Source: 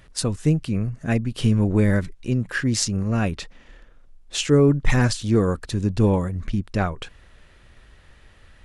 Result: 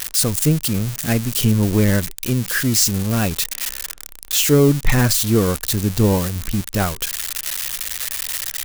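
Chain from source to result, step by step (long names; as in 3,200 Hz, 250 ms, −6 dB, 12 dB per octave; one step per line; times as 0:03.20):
spike at every zero crossing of −14.5 dBFS
level +2.5 dB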